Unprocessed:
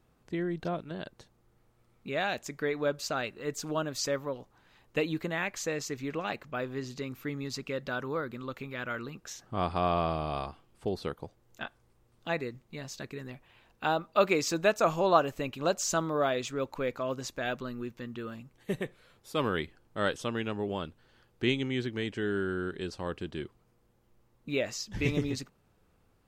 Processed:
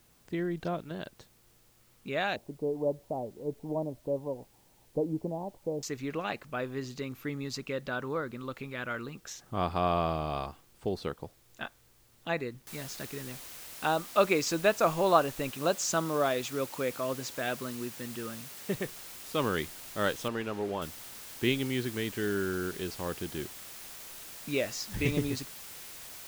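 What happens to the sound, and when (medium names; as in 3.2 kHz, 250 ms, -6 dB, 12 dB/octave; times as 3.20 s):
2.36–5.83 s: steep low-pass 940 Hz 72 dB/octave
7.78–8.37 s: treble shelf 6 kHz -4.5 dB
12.67 s: noise floor step -66 dB -46 dB
15.51–18.75 s: high-pass 80 Hz
20.28–20.82 s: overdrive pedal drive 11 dB, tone 1.1 kHz, clips at -19 dBFS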